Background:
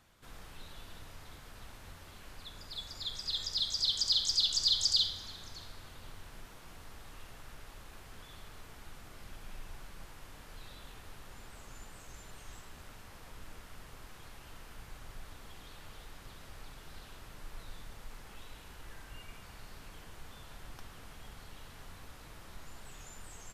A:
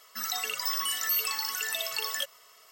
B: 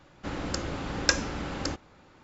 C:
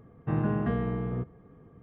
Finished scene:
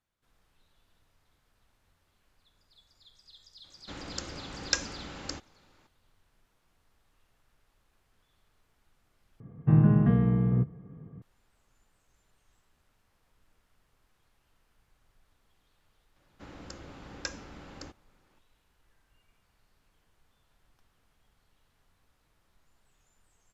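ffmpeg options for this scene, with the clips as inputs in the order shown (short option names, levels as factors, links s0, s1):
-filter_complex "[2:a]asplit=2[s0][s1];[0:a]volume=0.1[s2];[s0]highshelf=f=2300:g=7.5[s3];[3:a]equalizer=f=150:w=1:g=13[s4];[s2]asplit=2[s5][s6];[s5]atrim=end=9.404[s7];[s4]atrim=end=1.82,asetpts=PTS-STARTPTS,volume=0.708[s8];[s6]atrim=start=11.216[s9];[s3]atrim=end=2.23,asetpts=PTS-STARTPTS,volume=0.335,afade=t=in:d=0.004:c=hsin,afade=t=out:st=2.226:d=0.004:c=hsin,adelay=3640[s10];[s1]atrim=end=2.23,asetpts=PTS-STARTPTS,volume=0.211,afade=t=in:d=0.004:c=hsin,afade=t=out:st=2.226:d=0.004:c=hsin,adelay=16160[s11];[s7][s8]acrossfade=d=0.004:c1=hsin:c2=hsin[s12];[s12][s9]acrossfade=d=0.004:c1=hsin:c2=hsin[s13];[s13][s10][s11]amix=inputs=3:normalize=0"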